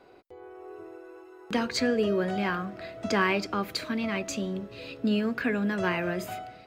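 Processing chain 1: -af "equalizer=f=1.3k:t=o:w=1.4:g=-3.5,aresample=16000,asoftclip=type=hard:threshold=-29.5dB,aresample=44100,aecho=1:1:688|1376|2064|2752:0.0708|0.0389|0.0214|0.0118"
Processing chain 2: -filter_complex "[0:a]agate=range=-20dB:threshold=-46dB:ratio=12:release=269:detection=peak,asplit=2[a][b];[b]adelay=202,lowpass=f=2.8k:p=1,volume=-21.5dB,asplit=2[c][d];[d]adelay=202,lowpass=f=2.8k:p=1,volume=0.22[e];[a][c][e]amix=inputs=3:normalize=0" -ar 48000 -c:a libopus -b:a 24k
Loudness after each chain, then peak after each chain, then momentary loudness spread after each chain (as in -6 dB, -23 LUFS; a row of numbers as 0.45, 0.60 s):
-33.5, -29.5 LUFS; -24.5, -13.5 dBFS; 15, 18 LU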